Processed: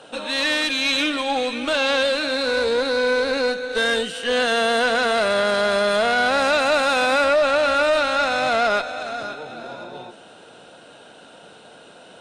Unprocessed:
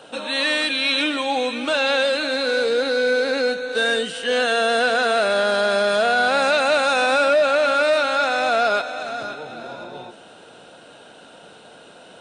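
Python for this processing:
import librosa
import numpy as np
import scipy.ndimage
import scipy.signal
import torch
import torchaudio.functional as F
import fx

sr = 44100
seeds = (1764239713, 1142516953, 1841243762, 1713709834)

y = fx.tube_stage(x, sr, drive_db=12.0, bias=0.6)
y = y * 10.0 ** (2.5 / 20.0)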